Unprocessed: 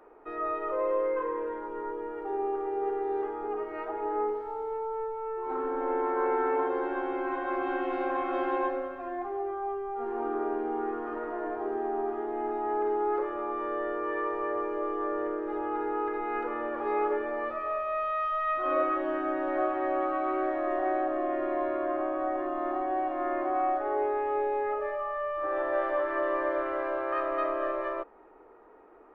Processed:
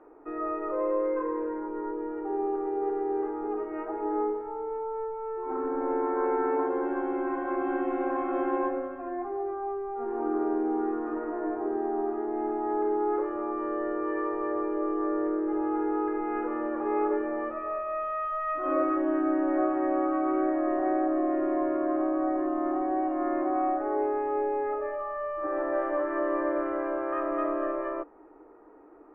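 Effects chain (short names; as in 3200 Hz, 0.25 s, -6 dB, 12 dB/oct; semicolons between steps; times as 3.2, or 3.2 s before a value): Bessel low-pass 1700 Hz, order 8; bell 300 Hz +11 dB 0.3 oct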